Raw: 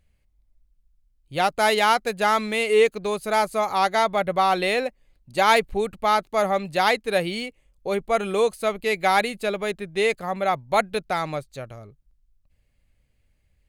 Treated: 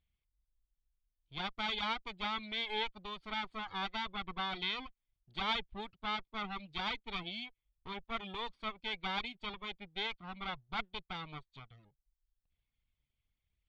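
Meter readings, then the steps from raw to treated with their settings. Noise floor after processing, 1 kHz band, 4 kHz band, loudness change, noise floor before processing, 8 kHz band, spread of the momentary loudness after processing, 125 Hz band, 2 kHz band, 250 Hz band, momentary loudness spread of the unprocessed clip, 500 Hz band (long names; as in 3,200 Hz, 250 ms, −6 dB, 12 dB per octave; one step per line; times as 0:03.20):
below −85 dBFS, −18.5 dB, −8.0 dB, −16.5 dB, −67 dBFS, below −25 dB, 11 LU, −14.5 dB, −15.0 dB, −15.5 dB, 11 LU, −27.0 dB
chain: lower of the sound and its delayed copy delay 0.89 ms
reverb reduction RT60 0.54 s
transistor ladder low-pass 3,900 Hz, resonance 60%
level −6 dB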